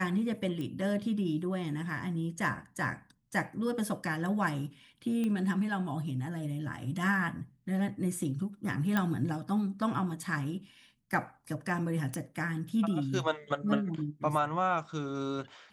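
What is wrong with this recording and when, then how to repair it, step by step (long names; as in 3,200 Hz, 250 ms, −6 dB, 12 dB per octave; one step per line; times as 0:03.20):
0:00.61: click −27 dBFS
0:05.24: click −22 dBFS
0:08.97: click −16 dBFS
0:12.14: click −21 dBFS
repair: click removal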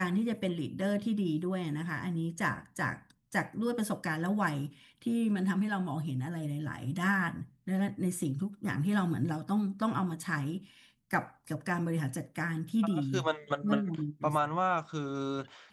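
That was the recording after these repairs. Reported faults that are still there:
none of them is left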